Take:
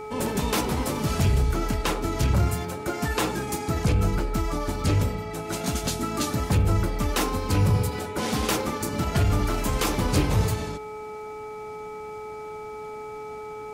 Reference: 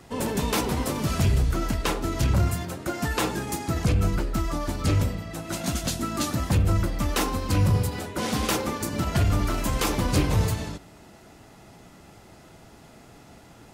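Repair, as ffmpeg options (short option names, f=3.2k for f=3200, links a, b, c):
-af "bandreject=f=427.8:t=h:w=4,bandreject=f=855.6:t=h:w=4,bandreject=f=1.2834k:t=h:w=4,bandreject=f=2.3k:w=30"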